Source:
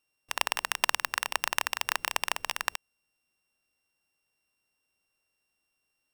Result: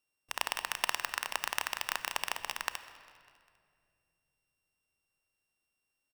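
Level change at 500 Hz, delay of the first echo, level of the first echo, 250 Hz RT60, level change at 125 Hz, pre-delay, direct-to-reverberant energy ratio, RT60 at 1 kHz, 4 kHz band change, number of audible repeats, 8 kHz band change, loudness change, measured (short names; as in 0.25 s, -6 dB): -4.5 dB, 0.2 s, -23.0 dB, 3.5 s, -4.5 dB, 29 ms, 11.5 dB, 2.0 s, -5.0 dB, 3, -5.0 dB, -5.0 dB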